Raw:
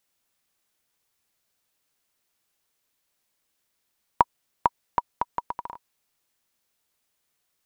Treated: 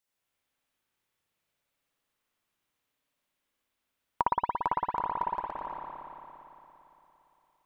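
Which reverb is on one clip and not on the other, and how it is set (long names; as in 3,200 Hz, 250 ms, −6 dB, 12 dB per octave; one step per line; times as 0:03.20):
spring reverb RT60 3.3 s, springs 57 ms, chirp 75 ms, DRR −6.5 dB
level −9.5 dB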